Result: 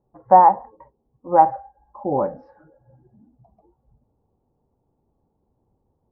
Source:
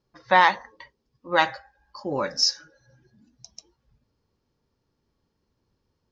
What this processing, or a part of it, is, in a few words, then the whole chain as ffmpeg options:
under water: -af "lowpass=f=890:w=0.5412,lowpass=f=890:w=1.3066,equalizer=f=780:t=o:w=0.36:g=9,volume=5dB"

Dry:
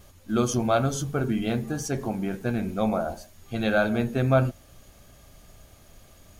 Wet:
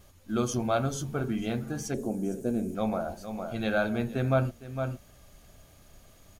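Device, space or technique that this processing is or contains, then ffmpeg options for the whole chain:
ducked delay: -filter_complex "[0:a]asplit=3[a][b][c];[b]adelay=458,volume=-5dB[d];[c]apad=whole_len=302186[e];[d][e]sidechaincompress=threshold=-41dB:ratio=8:attack=49:release=279[f];[a][f]amix=inputs=2:normalize=0,asettb=1/sr,asplit=3[g][h][i];[g]atrim=end=1.944[j];[h]atrim=start=1.94:end=2.75,asetpts=PTS-STARTPTS,afade=t=in:d=0.004:c=qsin,afade=t=out:st=0.806:d=0.004:c=qsin,equalizer=f=125:t=o:w=1:g=-6,equalizer=f=250:t=o:w=1:g=5,equalizer=f=500:t=o:w=1:g=6,equalizer=f=1k:t=o:w=1:g=-9,equalizer=f=2k:t=o:w=1:g=-11,equalizer=f=4k:t=o:w=1:g=-7,equalizer=f=8k:t=o:w=1:g=10[k];[i]atrim=start=2.746[l];[j][k]acrossfade=d=0.004:c1=hsin:c2=qsin[m];[m][l]acrossfade=d=0.004:c1=qsin:c2=hsin,volume=-4.5dB"

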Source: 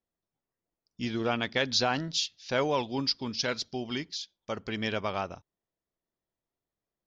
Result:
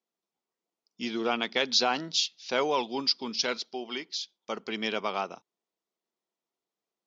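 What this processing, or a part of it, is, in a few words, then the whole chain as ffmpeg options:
television speaker: -filter_complex "[0:a]highpass=f=220:w=0.5412,highpass=f=220:w=1.3066,equalizer=f=280:t=q:w=4:g=-6,equalizer=f=580:t=q:w=4:g=-5,equalizer=f=1.7k:t=q:w=4:g=-6,lowpass=f=7.5k:w=0.5412,lowpass=f=7.5k:w=1.3066,asettb=1/sr,asplit=3[a][b][c];[a]atrim=end=3.574[d];[b]atrim=start=3.57:end=4.14,asetpts=PTS-STARTPTS,afade=t=in:d=0.004:c=qsin,afade=t=out:st=0.566:d=0.004:c=qsin,bass=f=250:g=-10,treble=f=4k:g=-7[e];[c]atrim=start=4.136[f];[d][e]acrossfade=d=0.004:c1=hsin:c2=qsin[g];[g][f]acrossfade=d=0.004:c1=qsin:c2=hsin,volume=3dB"

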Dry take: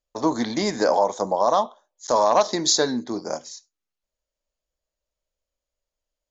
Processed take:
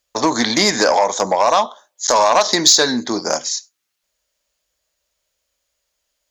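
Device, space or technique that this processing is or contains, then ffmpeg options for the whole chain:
mastering chain: -af "highpass=46,equalizer=f=1.7k:t=o:w=0.77:g=2,acompressor=threshold=-22dB:ratio=2,asoftclip=type=tanh:threshold=-14dB,tiltshelf=f=1.1k:g=-5.5,alimiter=level_in=13dB:limit=-1dB:release=50:level=0:latency=1,volume=-1dB"

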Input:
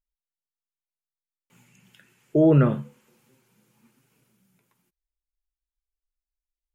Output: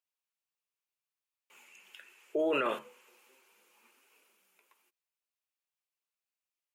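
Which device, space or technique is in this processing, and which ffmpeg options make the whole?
laptop speaker: -filter_complex "[0:a]highpass=f=390:w=0.5412,highpass=f=390:w=1.3066,equalizer=f=1.1k:t=o:w=0.47:g=4,equalizer=f=2.6k:t=o:w=0.47:g=7.5,alimiter=limit=-23.5dB:level=0:latency=1:release=19,asettb=1/sr,asplit=3[a][b][c];[a]atrim=end=2.394[d];[b]atrim=start=2.39:end=2.79,asetpts=PTS-STARTPTS,afade=t=in:d=0.004:c=qsin,afade=t=out:st=0.396:d=0.004:c=qsin,highshelf=f=2.3k:g=11[e];[c]atrim=start=2.786[f];[d][e]acrossfade=d=0.004:c1=hsin:c2=qsin[g];[g][f]acrossfade=d=0.004:c1=qsin:c2=hsin"

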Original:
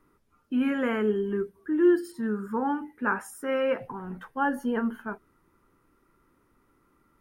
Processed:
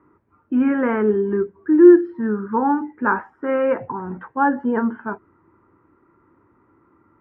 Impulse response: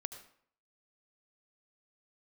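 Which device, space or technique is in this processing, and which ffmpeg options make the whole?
bass cabinet: -af "highpass=76,equalizer=f=96:t=q:w=4:g=9,equalizer=f=330:t=q:w=4:g=7,equalizer=f=940:t=q:w=4:g=6,lowpass=f=2k:w=0.5412,lowpass=f=2k:w=1.3066,volume=6dB"

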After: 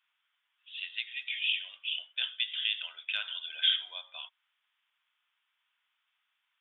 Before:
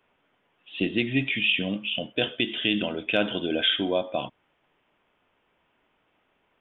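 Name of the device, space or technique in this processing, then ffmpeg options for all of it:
headphones lying on a table: -filter_complex "[0:a]highpass=f=1.2k:w=0.5412,highpass=f=1.2k:w=1.3066,equalizer=f=3.5k:t=o:w=0.43:g=8,asettb=1/sr,asplit=3[a][b][c];[a]atrim=end=0.994[d];[b]atrim=start=0.99:end=1.64,asetpts=PTS-STARTPTS,afade=t=in:d=0.004:c=qsin,afade=t=out:st=0.646:d=0.004:c=qsin,equalizer=f=1.1k:t=o:w=1.8:g=-4.5[e];[c]atrim=start=1.636[f];[d][e]acrossfade=d=0.004:c1=hsin:c2=qsin[g];[g][f]acrossfade=d=0.004:c1=qsin:c2=hsin,volume=-8.5dB"

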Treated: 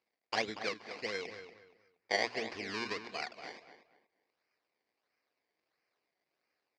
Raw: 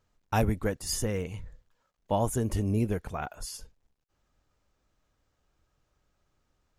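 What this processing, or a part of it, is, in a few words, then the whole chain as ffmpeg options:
circuit-bent sampling toy: -filter_complex "[0:a]asettb=1/sr,asplit=3[a][b][c];[a]atrim=end=0.654[d];[b]atrim=start=0.65:end=2.44,asetpts=PTS-STARTPTS,afade=t=in:d=0.004:c=qsin,afade=t=out:st=1.786:d=0.004:c=qsin,highshelf=f=2.9k:t=q:w=3:g=-8[e];[c]atrim=start=2.436[f];[d][e]acrossfade=d=0.004:c1=hsin:c2=qsin[g];[g][f]acrossfade=d=0.004:c1=qsin:c2=hsin,equalizer=f=1k:w=5.7:g=-5,bandreject=f=60:t=h:w=6,bandreject=f=120:t=h:w=6,bandreject=f=180:t=h:w=6,bandreject=f=240:t=h:w=6,bandreject=f=300:t=h:w=6,acrusher=samples=23:mix=1:aa=0.000001:lfo=1:lforange=23:lforate=1.5,highpass=570,equalizer=f=580:t=q:w=4:g=-6,equalizer=f=870:t=q:w=4:g=-6,equalizer=f=1.3k:t=q:w=4:g=-8,equalizer=f=2.2k:t=q:w=4:g=5,equalizer=f=3.3k:t=q:w=4:g=-7,equalizer=f=4.8k:t=q:w=4:g=7,lowpass=f=5.1k:w=0.5412,lowpass=f=5.1k:w=1.3066,asplit=2[h][i];[i]adelay=236,lowpass=f=3k:p=1,volume=-10dB,asplit=2[j][k];[k]adelay=236,lowpass=f=3k:p=1,volume=0.28,asplit=2[l][m];[m]adelay=236,lowpass=f=3k:p=1,volume=0.28[n];[h][j][l][n]amix=inputs=4:normalize=0"

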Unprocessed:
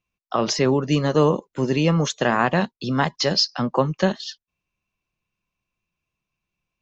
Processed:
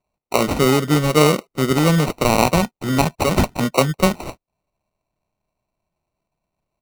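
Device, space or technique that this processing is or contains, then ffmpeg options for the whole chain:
crushed at another speed: -af "asetrate=35280,aresample=44100,acrusher=samples=33:mix=1:aa=0.000001,asetrate=55125,aresample=44100,volume=3.5dB"

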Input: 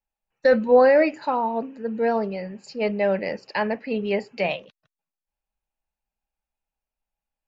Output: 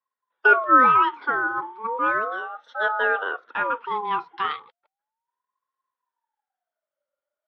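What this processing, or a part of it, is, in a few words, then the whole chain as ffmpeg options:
voice changer toy: -filter_complex "[0:a]asettb=1/sr,asplit=3[a][b][c];[a]atrim=end=3.234[d];[b]atrim=start=3.23:end=3.74,asetpts=PTS-STARTPTS,afade=t=in:d=0.004:c=qsin,afade=t=out:st=0.506:d=0.004:c=qsin,equalizer=f=4.5k:t=o:w=1:g=-13[e];[c]atrim=start=3.736[f];[d][e]acrossfade=d=0.004:c1=hsin:c2=qsin[g];[g][f]acrossfade=d=0.004:c1=qsin:c2=hsin,aeval=exprs='val(0)*sin(2*PI*820*n/s+820*0.3/0.35*sin(2*PI*0.35*n/s))':c=same,highpass=440,equalizer=f=510:t=q:w=4:g=6,equalizer=f=920:t=q:w=4:g=6,equalizer=f=1.4k:t=q:w=4:g=7,equalizer=f=2.6k:t=q:w=4:g=-4,lowpass=f=3.5k:w=0.5412,lowpass=f=3.5k:w=1.3066"

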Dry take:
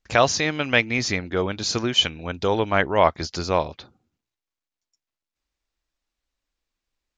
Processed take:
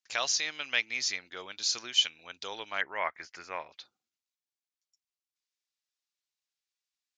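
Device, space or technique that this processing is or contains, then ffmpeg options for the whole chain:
piezo pickup straight into a mixer: -filter_complex "[0:a]asettb=1/sr,asplit=3[a][b][c];[a]atrim=end=2.814[d];[b]atrim=start=2.81:end=3.72,asetpts=PTS-STARTPTS,afade=t=in:d=0.004:c=qsin,afade=t=out:st=0.906:d=0.004:c=qsin,highshelf=f=2.8k:t=q:w=3:g=-12[e];[c]atrim=start=3.716[f];[d][e]acrossfade=d=0.004:c1=hsin:c2=qsin[g];[g][f]acrossfade=d=0.004:c1=qsin:c2=hsin,lowpass=6.3k,aderivative,volume=1.5dB"

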